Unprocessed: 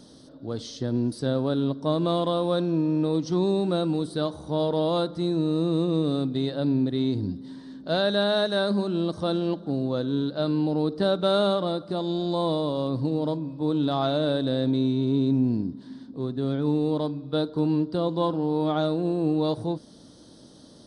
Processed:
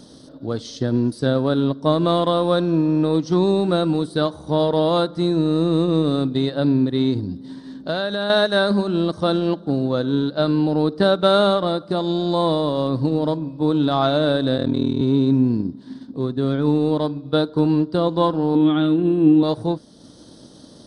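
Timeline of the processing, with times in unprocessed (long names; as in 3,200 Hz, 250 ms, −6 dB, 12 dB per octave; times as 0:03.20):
0:07.19–0:08.30: downward compressor, threshold −26 dBFS
0:14.56–0:15.01: ring modulation 20 Hz
0:18.55–0:19.43: drawn EQ curve 170 Hz 0 dB, 260 Hz +11 dB, 570 Hz −12 dB, 3,300 Hz +4 dB, 5,300 Hz −28 dB, 8,600 Hz −8 dB
whole clip: transient designer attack +2 dB, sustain −4 dB; dynamic equaliser 1,500 Hz, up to +4 dB, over −42 dBFS, Q 1.2; level +5.5 dB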